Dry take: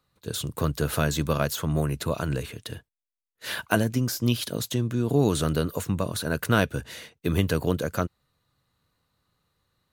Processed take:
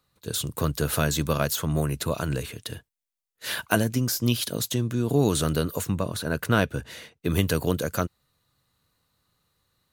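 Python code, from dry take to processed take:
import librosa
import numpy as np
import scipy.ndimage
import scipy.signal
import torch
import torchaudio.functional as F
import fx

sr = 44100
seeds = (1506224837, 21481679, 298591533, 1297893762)

y = fx.high_shelf(x, sr, hz=4200.0, db=fx.steps((0.0, 5.0), (5.96, -2.5), (7.29, 7.0)))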